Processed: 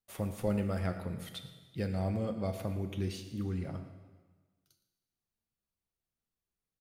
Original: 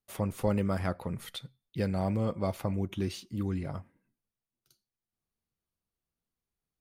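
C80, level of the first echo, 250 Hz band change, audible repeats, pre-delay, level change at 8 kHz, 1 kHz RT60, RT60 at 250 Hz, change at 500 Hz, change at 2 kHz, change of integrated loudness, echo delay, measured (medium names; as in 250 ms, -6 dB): 10.0 dB, -17.0 dB, -3.5 dB, 1, 4 ms, -3.0 dB, 1.4 s, 1.4 s, -3.5 dB, -3.5 dB, -3.5 dB, 115 ms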